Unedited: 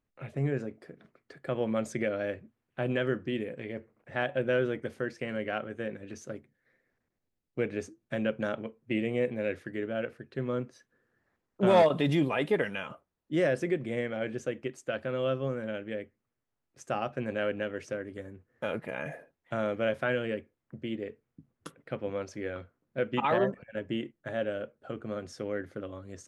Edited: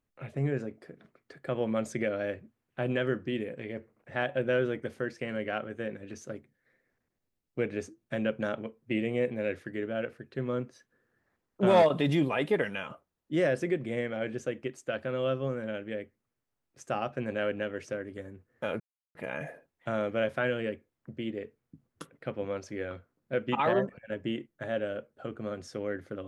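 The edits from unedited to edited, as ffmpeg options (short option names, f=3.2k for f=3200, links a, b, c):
-filter_complex "[0:a]asplit=2[a][b];[a]atrim=end=18.8,asetpts=PTS-STARTPTS,afade=t=out:st=18.796:d=0.004:c=hsin,apad=pad_dur=0.35[c];[b]atrim=start=18.8,asetpts=PTS-STARTPTS,afade=t=in:d=0.004:c=hsin[d];[c][d]concat=n=2:v=0:a=1"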